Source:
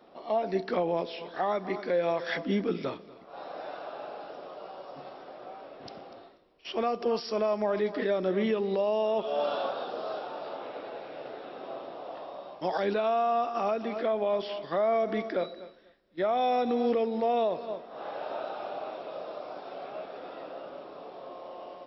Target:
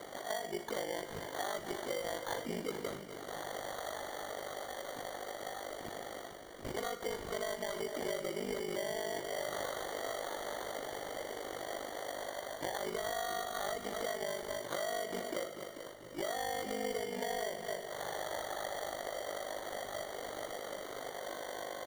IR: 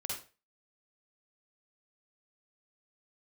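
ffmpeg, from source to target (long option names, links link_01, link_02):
-filter_complex "[0:a]equalizer=frequency=200:width_type=o:width=1.3:gain=-7.5,acompressor=mode=upward:threshold=-34dB:ratio=2.5,aeval=exprs='val(0)*sin(2*PI*25*n/s)':channel_layout=same,acompressor=threshold=-35dB:ratio=6,acrusher=samples=17:mix=1:aa=0.000001,asplit=6[link_01][link_02][link_03][link_04][link_05][link_06];[link_02]adelay=439,afreqshift=-34,volume=-11dB[link_07];[link_03]adelay=878,afreqshift=-68,volume=-16.8dB[link_08];[link_04]adelay=1317,afreqshift=-102,volume=-22.7dB[link_09];[link_05]adelay=1756,afreqshift=-136,volume=-28.5dB[link_10];[link_06]adelay=2195,afreqshift=-170,volume=-34.4dB[link_11];[link_01][link_07][link_08][link_09][link_10][link_11]amix=inputs=6:normalize=0,asplit=2[link_12][link_13];[1:a]atrim=start_sample=2205[link_14];[link_13][link_14]afir=irnorm=-1:irlink=0,volume=-9dB[link_15];[link_12][link_15]amix=inputs=2:normalize=0,volume=-1.5dB"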